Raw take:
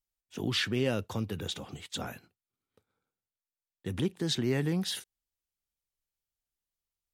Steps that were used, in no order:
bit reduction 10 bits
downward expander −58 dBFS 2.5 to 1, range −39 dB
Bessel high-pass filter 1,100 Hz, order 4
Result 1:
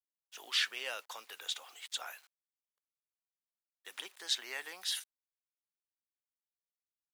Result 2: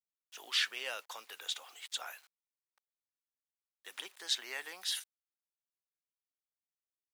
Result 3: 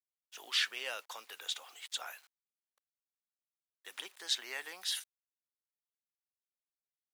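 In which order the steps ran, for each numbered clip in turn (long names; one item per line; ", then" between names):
bit reduction, then Bessel high-pass filter, then downward expander
downward expander, then bit reduction, then Bessel high-pass filter
bit reduction, then downward expander, then Bessel high-pass filter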